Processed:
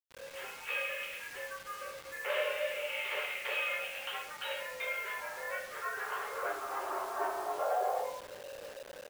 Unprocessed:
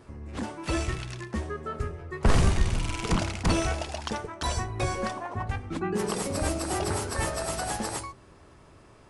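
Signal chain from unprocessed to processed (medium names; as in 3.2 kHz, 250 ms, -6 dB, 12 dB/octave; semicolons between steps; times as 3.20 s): frequency shift -360 Hz; in parallel at -2 dB: compression 6:1, threshold -36 dBFS, peak gain reduction 19.5 dB; on the sum: speakerphone echo 180 ms, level -20 dB; flange 1.4 Hz, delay 8.6 ms, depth 9.2 ms, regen +40%; mistuned SSB +260 Hz 160–3100 Hz; 6.45–7.58 s: ring modulator 140 Hz; band-pass sweep 2.5 kHz -> 550 Hz, 4.94–8.47 s; reverberation, pre-delay 3 ms, DRR -5.5 dB; bit crusher 8-bit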